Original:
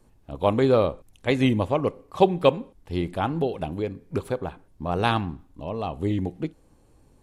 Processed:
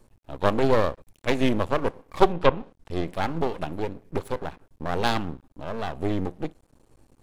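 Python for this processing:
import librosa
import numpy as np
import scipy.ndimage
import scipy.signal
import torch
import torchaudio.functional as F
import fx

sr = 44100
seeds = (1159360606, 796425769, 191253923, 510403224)

y = np.maximum(x, 0.0)
y = fx.env_lowpass_down(y, sr, base_hz=2700.0, full_db=-17.0, at=(2.32, 3.07), fade=0.02)
y = y * librosa.db_to_amplitude(3.0)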